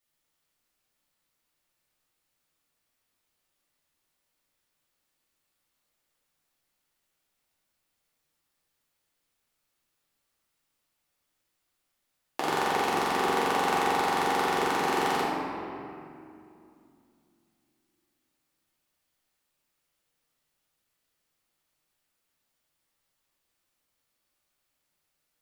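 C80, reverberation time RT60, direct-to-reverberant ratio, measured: 0.5 dB, 2.6 s, −7.5 dB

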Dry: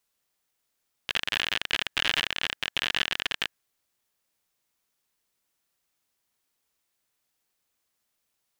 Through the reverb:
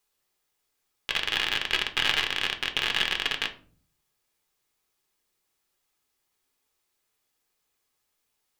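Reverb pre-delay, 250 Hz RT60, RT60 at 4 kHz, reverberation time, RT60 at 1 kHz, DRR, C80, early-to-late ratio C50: 5 ms, 0.75 s, 0.25 s, 0.45 s, 0.40 s, 4.0 dB, 18.5 dB, 13.5 dB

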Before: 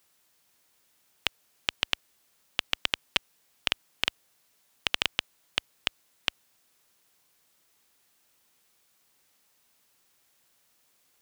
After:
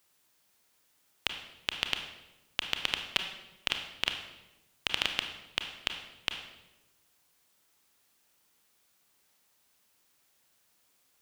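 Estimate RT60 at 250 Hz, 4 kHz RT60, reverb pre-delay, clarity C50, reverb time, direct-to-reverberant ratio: 1.3 s, 0.80 s, 27 ms, 7.0 dB, 1.0 s, 5.0 dB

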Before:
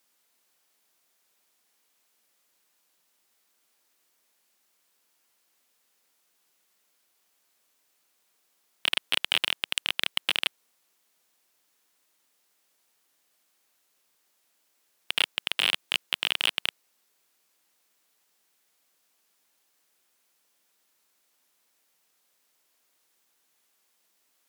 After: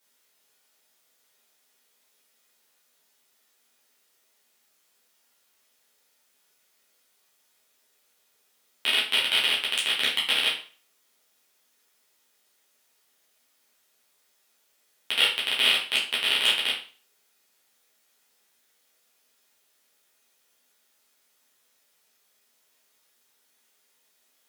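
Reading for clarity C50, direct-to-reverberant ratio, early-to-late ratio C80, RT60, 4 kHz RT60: 5.5 dB, −6.5 dB, 11.5 dB, 0.40 s, 0.40 s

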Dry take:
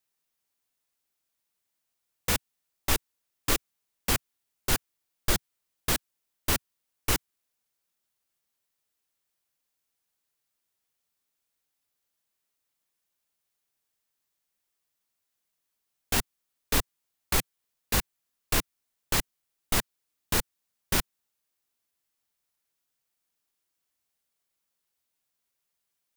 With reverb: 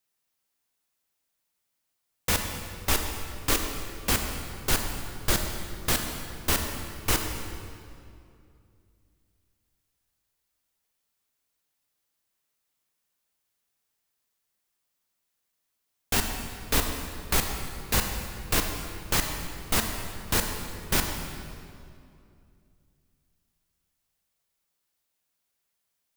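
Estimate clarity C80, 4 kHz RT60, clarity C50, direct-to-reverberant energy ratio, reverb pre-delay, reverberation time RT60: 5.5 dB, 1.8 s, 4.5 dB, 3.5 dB, 27 ms, 2.5 s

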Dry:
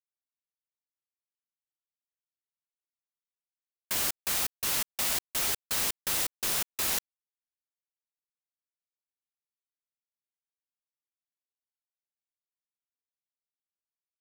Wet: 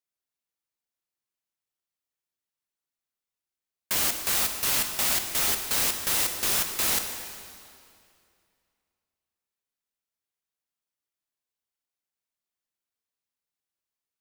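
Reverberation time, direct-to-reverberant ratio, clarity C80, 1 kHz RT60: 2.4 s, 5.0 dB, 7.5 dB, 2.4 s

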